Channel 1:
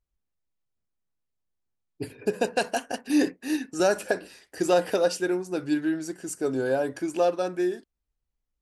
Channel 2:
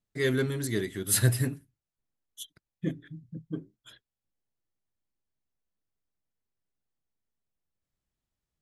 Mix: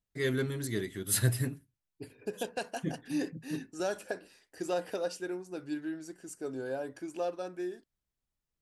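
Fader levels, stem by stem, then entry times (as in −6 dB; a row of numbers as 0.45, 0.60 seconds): −11.0, −4.0 decibels; 0.00, 0.00 seconds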